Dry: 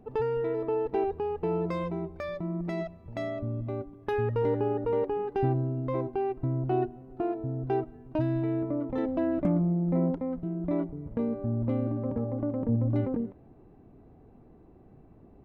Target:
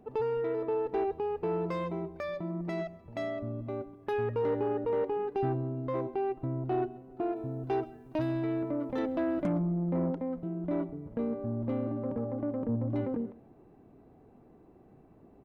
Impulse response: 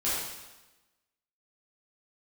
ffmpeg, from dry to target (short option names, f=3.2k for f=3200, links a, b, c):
-filter_complex "[0:a]lowshelf=f=120:g=-11,aecho=1:1:133:0.0841,asoftclip=type=tanh:threshold=-22dB,asettb=1/sr,asplit=3[a][b][c];[a]atrim=end=7.364[d];[b]atrim=start=7.36:end=9.58,asetpts=PTS-STARTPTS,afade=t=in:d=0.004:c=qsin,afade=t=out:st=2.216:d=0.004:c=qsin,highshelf=f=2.5k:g=9.5[e];[c]atrim=start=9.576[f];[d][e]acrossfade=d=0.004:c1=hsin:c2=qsin[g];[g][f]acrossfade=d=0.004:c1=qsin:c2=hsin"